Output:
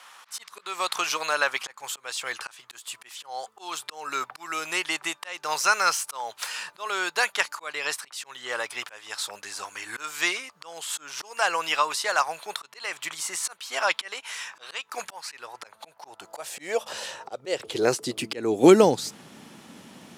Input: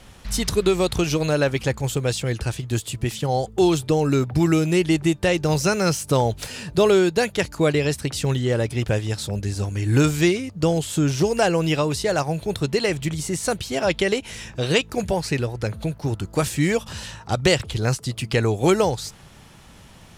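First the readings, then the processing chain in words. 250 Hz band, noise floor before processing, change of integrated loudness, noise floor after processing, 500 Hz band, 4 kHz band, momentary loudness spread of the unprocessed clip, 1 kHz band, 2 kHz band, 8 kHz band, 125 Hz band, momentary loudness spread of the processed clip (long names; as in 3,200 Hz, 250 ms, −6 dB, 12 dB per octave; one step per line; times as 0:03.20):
−9.0 dB, −46 dBFS, −5.0 dB, −59 dBFS, −7.0 dB, −2.5 dB, 8 LU, −0.5 dB, 0.0 dB, −2.0 dB, −21.5 dB, 16 LU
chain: volume swells 306 ms
high-pass filter sweep 1,100 Hz → 240 Hz, 0:15.30–0:18.92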